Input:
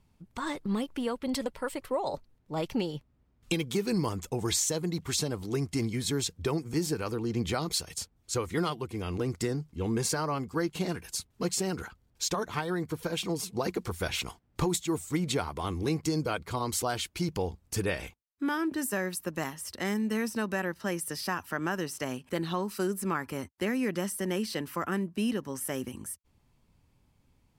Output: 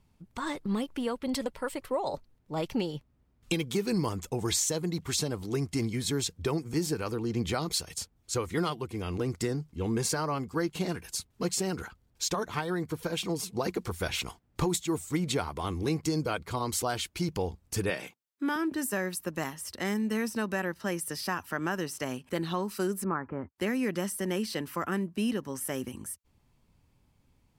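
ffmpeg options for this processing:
-filter_complex "[0:a]asettb=1/sr,asplit=3[a][b][c];[a]atrim=end=17.904[d];[b]atrim=start=17.9:end=18.56,asetpts=PTS-STARTPTS,afade=t=in:d=0.004:c=qsin,afade=t=out:st=0.656:d=0.004:c=qsin,highpass=f=150:w=0.5412,highpass=f=150:w=1.3066[e];[c]atrim=start=18.556[f];[d][e]acrossfade=d=0.004:c1=hsin:c2=qsin[g];[g][f]acrossfade=d=0.004:c1=qsin:c2=hsin,asettb=1/sr,asplit=3[h][i][j];[h]atrim=end=23.044[k];[i]atrim=start=23.04:end=23.56,asetpts=PTS-STARTPTS,afade=t=in:d=0.004:c=qsin,afade=t=out:st=0.516:d=0.004:c=qsin,lowpass=f=1.6k:w=0.5412,lowpass=f=1.6k:w=1.3066[l];[j]atrim=start=23.556[m];[k][l]acrossfade=d=0.004:c1=hsin:c2=qsin[n];[n][m]acrossfade=d=0.004:c1=qsin:c2=hsin"

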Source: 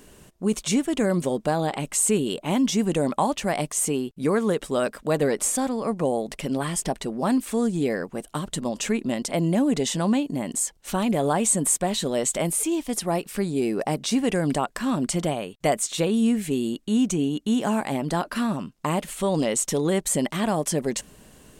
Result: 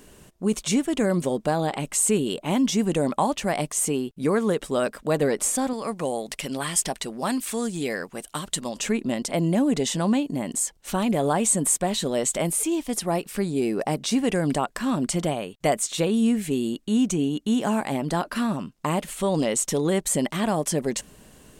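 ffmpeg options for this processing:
-filter_complex "[0:a]asettb=1/sr,asplit=3[a][b][c];[a]atrim=end=5.734[d];[b]atrim=start=5.73:end=8.76,asetpts=PTS-STARTPTS,afade=t=in:d=0.004:c=qsin,afade=t=out:st=3.026:d=0.004:c=qsin,tiltshelf=f=1.1k:g=-5.5[e];[c]atrim=start=8.756[f];[d][e]acrossfade=d=0.004:c1=hsin:c2=qsin[g];[g][f]acrossfade=d=0.004:c1=qsin:c2=hsin"

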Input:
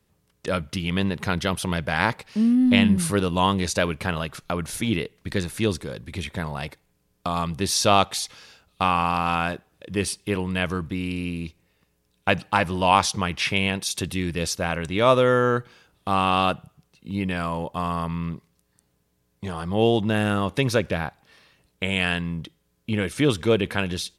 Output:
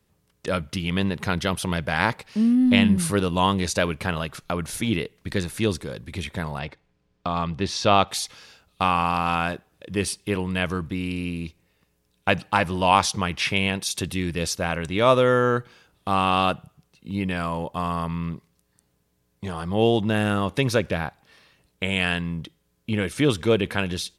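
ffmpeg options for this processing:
-filter_complex "[0:a]asettb=1/sr,asplit=3[a][b][c];[a]atrim=end=6.594[d];[b]atrim=start=6.59:end=8.08,asetpts=PTS-STARTPTS,afade=t=in:d=0.004:c=qsin,afade=t=out:st=1.486:d=0.004:c=qsin,lowpass=4k[e];[c]atrim=start=8.076[f];[d][e]acrossfade=d=0.004:c1=hsin:c2=qsin[g];[g][f]acrossfade=d=0.004:c1=qsin:c2=hsin"

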